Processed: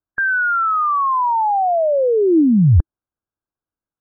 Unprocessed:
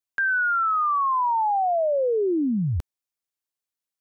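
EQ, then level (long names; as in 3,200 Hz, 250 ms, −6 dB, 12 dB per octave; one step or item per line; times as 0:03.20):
linear-phase brick-wall low-pass 1,700 Hz
low-shelf EQ 230 Hz +11.5 dB
parametric band 320 Hz +3 dB 0.22 octaves
+4.5 dB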